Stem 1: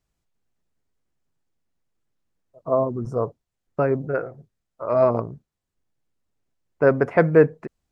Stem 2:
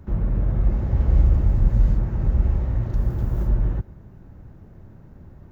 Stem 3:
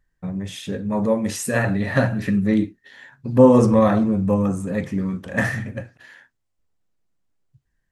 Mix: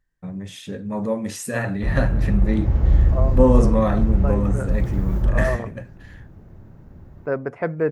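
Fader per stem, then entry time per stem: -7.5 dB, +1.0 dB, -4.0 dB; 0.45 s, 1.75 s, 0.00 s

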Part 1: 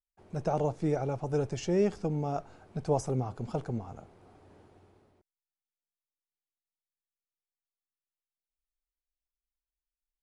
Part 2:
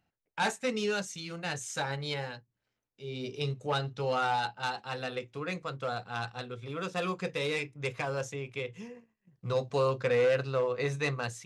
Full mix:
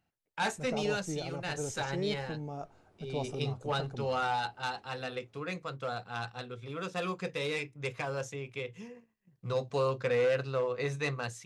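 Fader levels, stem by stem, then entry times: -8.0 dB, -2.0 dB; 0.25 s, 0.00 s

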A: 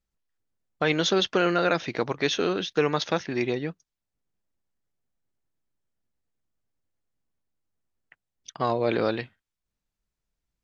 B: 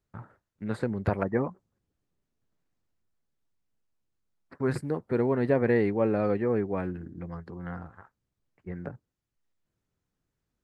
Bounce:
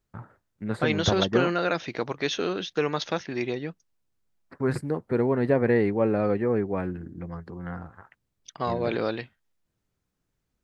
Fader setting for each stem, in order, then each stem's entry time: -2.5 dB, +2.0 dB; 0.00 s, 0.00 s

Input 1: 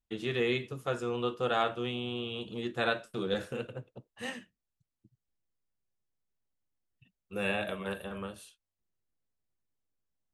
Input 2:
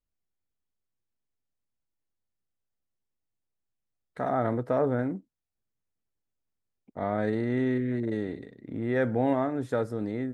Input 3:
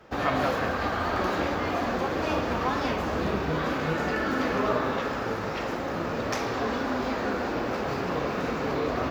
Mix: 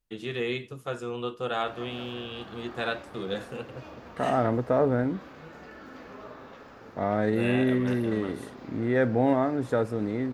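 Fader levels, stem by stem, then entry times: -0.5 dB, +2.5 dB, -18.5 dB; 0.00 s, 0.00 s, 1.55 s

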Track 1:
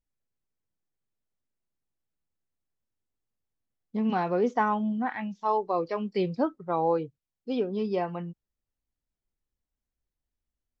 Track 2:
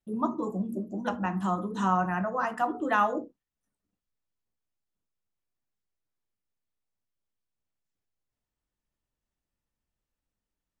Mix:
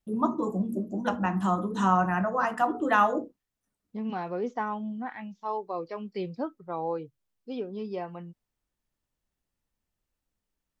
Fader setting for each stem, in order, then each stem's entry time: -6.0 dB, +2.5 dB; 0.00 s, 0.00 s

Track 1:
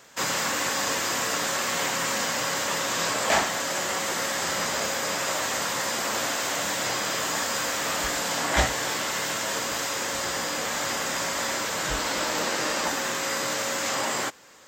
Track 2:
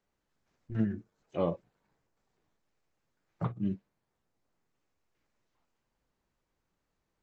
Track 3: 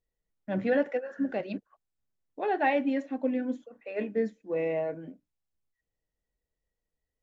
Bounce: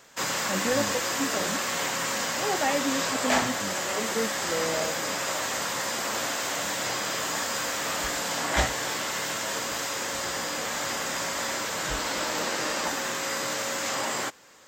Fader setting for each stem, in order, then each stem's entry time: -2.0 dB, -7.5 dB, -1.5 dB; 0.00 s, 0.00 s, 0.00 s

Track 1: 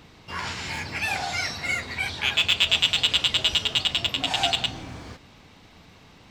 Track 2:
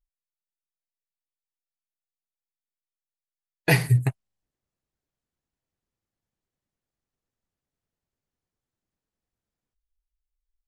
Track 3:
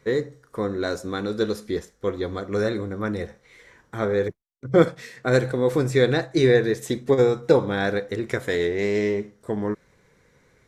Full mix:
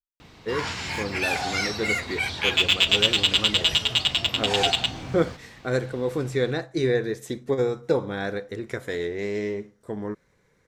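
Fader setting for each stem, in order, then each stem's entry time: +1.0 dB, -20.0 dB, -5.5 dB; 0.20 s, 0.00 s, 0.40 s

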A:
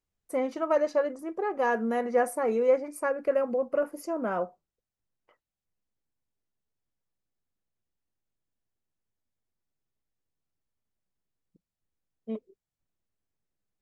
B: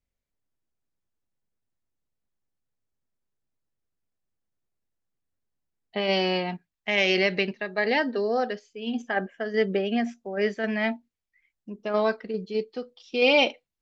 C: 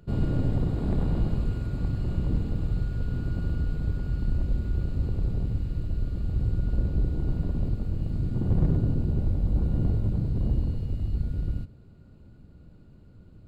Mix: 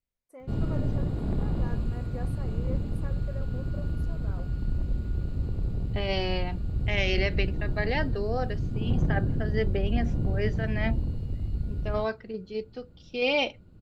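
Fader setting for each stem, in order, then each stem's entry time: -18.5 dB, -5.5 dB, -2.5 dB; 0.00 s, 0.00 s, 0.40 s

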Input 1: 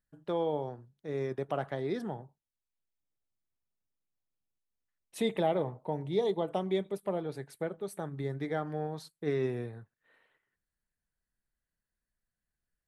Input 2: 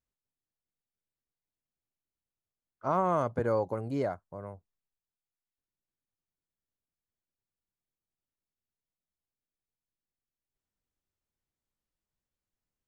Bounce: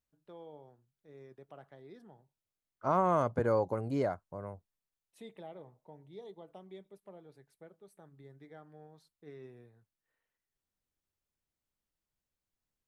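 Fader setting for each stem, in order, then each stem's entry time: -19.0 dB, -0.5 dB; 0.00 s, 0.00 s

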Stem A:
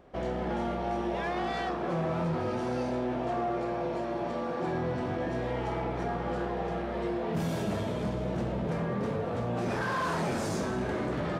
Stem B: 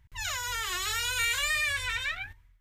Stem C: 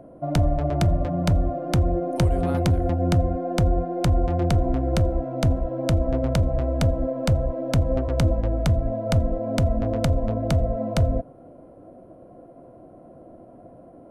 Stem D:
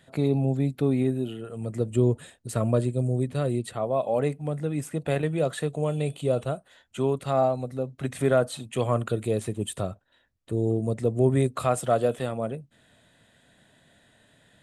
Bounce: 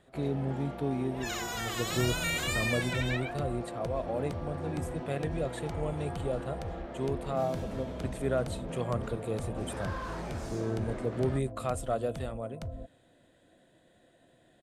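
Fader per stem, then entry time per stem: -9.0 dB, -4.5 dB, -19.0 dB, -8.5 dB; 0.00 s, 1.05 s, 1.65 s, 0.00 s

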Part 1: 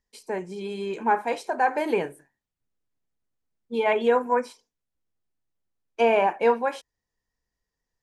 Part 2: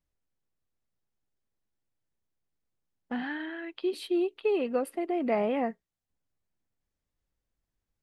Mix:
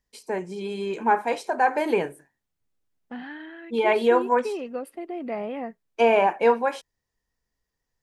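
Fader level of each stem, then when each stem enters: +1.5 dB, -3.5 dB; 0.00 s, 0.00 s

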